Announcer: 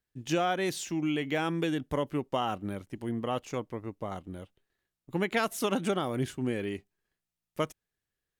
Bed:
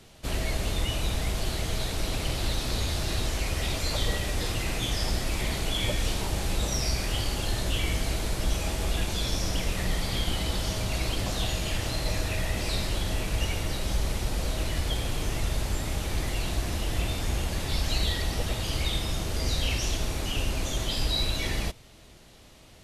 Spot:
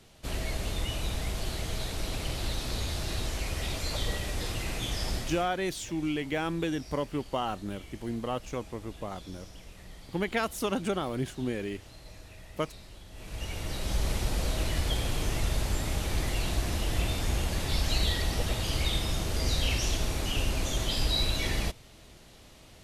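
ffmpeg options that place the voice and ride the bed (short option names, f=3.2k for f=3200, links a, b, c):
-filter_complex "[0:a]adelay=5000,volume=-1dB[a];[1:a]volume=15.5dB,afade=t=out:st=5.15:d=0.34:silence=0.158489,afade=t=in:st=13.12:d=0.99:silence=0.105925[b];[a][b]amix=inputs=2:normalize=0"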